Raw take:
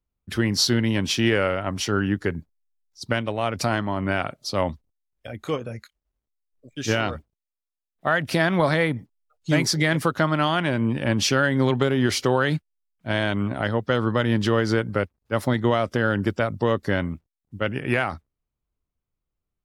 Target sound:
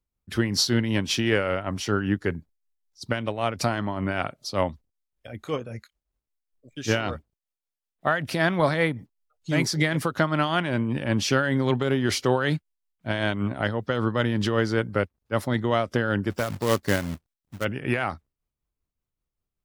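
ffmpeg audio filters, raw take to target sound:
-filter_complex "[0:a]tremolo=f=5.2:d=0.48,asplit=3[a][b][c];[a]afade=t=out:st=16.3:d=0.02[d];[b]acrusher=bits=2:mode=log:mix=0:aa=0.000001,afade=t=in:st=16.3:d=0.02,afade=t=out:st=17.63:d=0.02[e];[c]afade=t=in:st=17.63:d=0.02[f];[d][e][f]amix=inputs=3:normalize=0"

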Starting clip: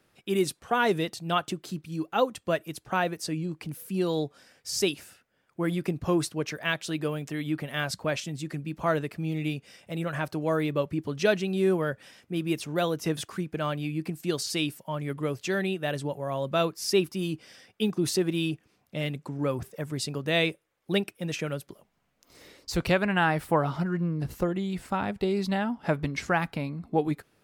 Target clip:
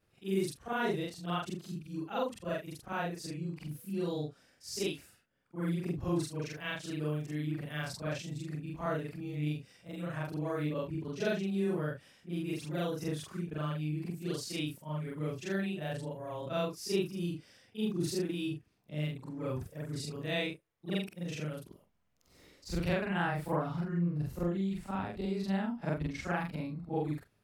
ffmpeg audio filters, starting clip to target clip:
-af "afftfilt=real='re':imag='-im':win_size=4096:overlap=0.75,lowshelf=f=170:g=9.5,volume=-5dB"

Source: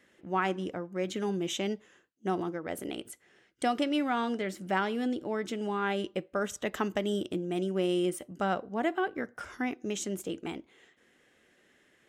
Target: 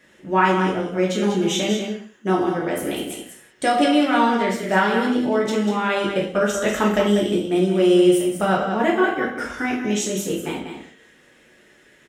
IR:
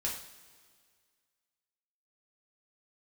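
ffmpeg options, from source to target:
-filter_complex "[0:a]aecho=1:1:193:0.422[a];[1:a]atrim=start_sample=2205,afade=t=out:st=0.25:d=0.01,atrim=end_sample=11466[b];[a][b]afir=irnorm=-1:irlink=0,volume=8.5dB"

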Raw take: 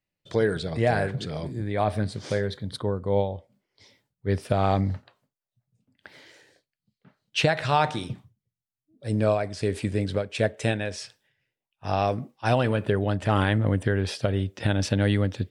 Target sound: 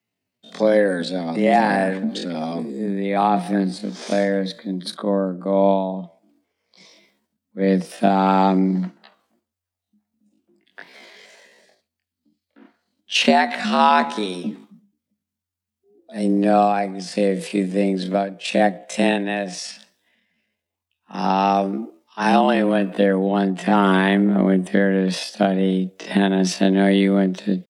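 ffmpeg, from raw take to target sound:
-af "afreqshift=89,atempo=0.56,volume=6dB"

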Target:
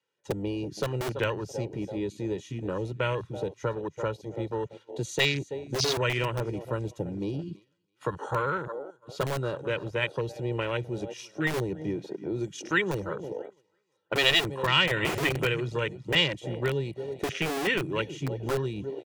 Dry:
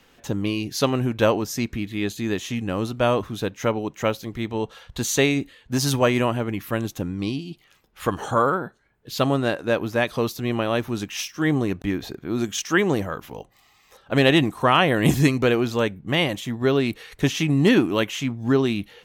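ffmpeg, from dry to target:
-filter_complex "[0:a]highpass=f=130:w=0.5412,highpass=f=130:w=1.3066,aecho=1:1:2.1:0.79,asplit=2[a][b];[b]aecho=0:1:330|660|990|1320:0.168|0.0672|0.0269|0.0107[c];[a][c]amix=inputs=2:normalize=0,agate=range=-12dB:threshold=-40dB:ratio=16:detection=peak,lowpass=f=10k:w=0.5412,lowpass=f=10k:w=1.3066,afwtdn=0.0501,acrossover=split=170|1800[d][e][f];[d]aeval=exprs='(mod(25.1*val(0)+1,2)-1)/25.1':c=same[g];[e]acompressor=threshold=-30dB:ratio=6[h];[g][h][f]amix=inputs=3:normalize=0"

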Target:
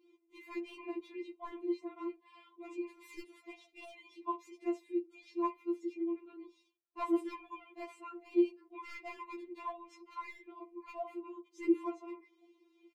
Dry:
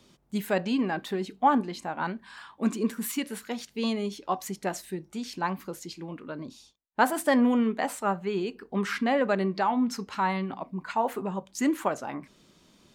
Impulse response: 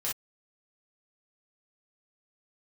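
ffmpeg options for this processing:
-filter_complex "[0:a]asplit=3[a][b][c];[a]bandpass=f=300:t=q:w=8,volume=0dB[d];[b]bandpass=f=870:t=q:w=8,volume=-6dB[e];[c]bandpass=f=2.24k:t=q:w=8,volume=-9dB[f];[d][e][f]amix=inputs=3:normalize=0,adynamicequalizer=threshold=0.00141:dfrequency=1800:dqfactor=1.8:tfrequency=1800:tqfactor=1.8:attack=5:release=100:ratio=0.375:range=2:mode=cutabove:tftype=bell,acrossover=split=110|1800[g][h][i];[g]asplit=8[j][k][l][m][n][o][p][q];[k]adelay=269,afreqshift=150,volume=-13.5dB[r];[l]adelay=538,afreqshift=300,volume=-17.5dB[s];[m]adelay=807,afreqshift=450,volume=-21.5dB[t];[n]adelay=1076,afreqshift=600,volume=-25.5dB[u];[o]adelay=1345,afreqshift=750,volume=-29.6dB[v];[p]adelay=1614,afreqshift=900,volume=-33.6dB[w];[q]adelay=1883,afreqshift=1050,volume=-37.6dB[x];[j][r][s][t][u][v][w][x]amix=inputs=8:normalize=0[y];[i]aeval=exprs='clip(val(0),-1,0.0015)':c=same[z];[y][h][z]amix=inputs=3:normalize=0,afftfilt=real='re*4*eq(mod(b,16),0)':imag='im*4*eq(mod(b,16),0)':win_size=2048:overlap=0.75,volume=7.5dB"

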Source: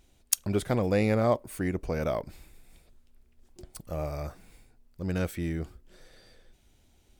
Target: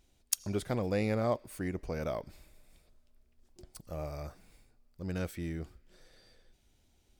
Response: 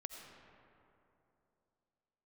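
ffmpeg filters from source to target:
-filter_complex "[0:a]asplit=2[a][b];[b]bandpass=f=5k:t=q:w=2.3:csg=0[c];[1:a]atrim=start_sample=2205[d];[c][d]afir=irnorm=-1:irlink=0,volume=-3.5dB[e];[a][e]amix=inputs=2:normalize=0,volume=-6dB"

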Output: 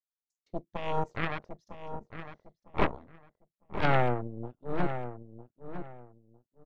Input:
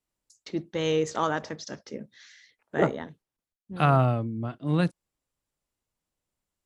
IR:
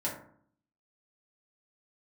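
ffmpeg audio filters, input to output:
-filter_complex "[0:a]asplit=2[a][b];[b]aeval=exprs='(mod(4.73*val(0)+1,2)-1)/4.73':c=same,volume=-5.5dB[c];[a][c]amix=inputs=2:normalize=0,afwtdn=0.0316,aeval=exprs='0.473*(cos(1*acos(clip(val(0)/0.473,-1,1)))-cos(1*PI/2))+0.075*(cos(3*acos(clip(val(0)/0.473,-1,1)))-cos(3*PI/2))+0.237*(cos(4*acos(clip(val(0)/0.473,-1,1)))-cos(4*PI/2))+0.0168*(cos(7*acos(clip(val(0)/0.473,-1,1)))-cos(7*PI/2))':c=same,bandreject=f=1.5k:w=26,asplit=2[d][e];[e]adelay=955,lowpass=f=1.8k:p=1,volume=-9.5dB,asplit=2[f][g];[g]adelay=955,lowpass=f=1.8k:p=1,volume=0.25,asplit=2[h][i];[i]adelay=955,lowpass=f=1.8k:p=1,volume=0.25[j];[f][h][j]amix=inputs=3:normalize=0[k];[d][k]amix=inputs=2:normalize=0,acrossover=split=4300[l][m];[m]acompressor=threshold=-56dB:ratio=4:attack=1:release=60[n];[l][n]amix=inputs=2:normalize=0,volume=-7.5dB"

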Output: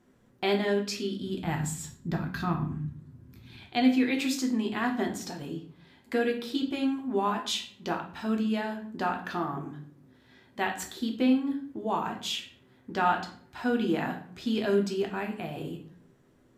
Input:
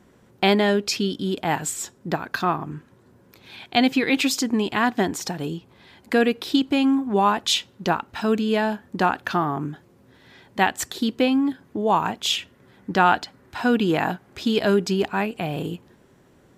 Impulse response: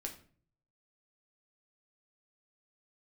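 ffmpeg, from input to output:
-filter_complex "[0:a]asplit=3[a][b][c];[a]afade=t=out:st=1.21:d=0.02[d];[b]asubboost=boost=11.5:cutoff=170,afade=t=in:st=1.21:d=0.02,afade=t=out:st=3.6:d=0.02[e];[c]afade=t=in:st=3.6:d=0.02[f];[d][e][f]amix=inputs=3:normalize=0[g];[1:a]atrim=start_sample=2205,asetrate=36603,aresample=44100[h];[g][h]afir=irnorm=-1:irlink=0,volume=-8dB"

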